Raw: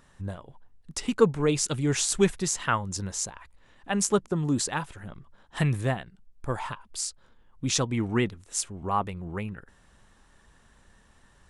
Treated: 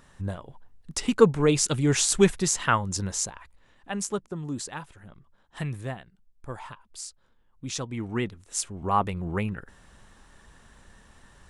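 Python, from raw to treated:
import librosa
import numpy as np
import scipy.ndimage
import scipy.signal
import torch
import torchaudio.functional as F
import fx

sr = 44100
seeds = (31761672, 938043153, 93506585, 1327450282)

y = fx.gain(x, sr, db=fx.line((3.13, 3.0), (4.21, -7.0), (7.77, -7.0), (9.18, 5.0)))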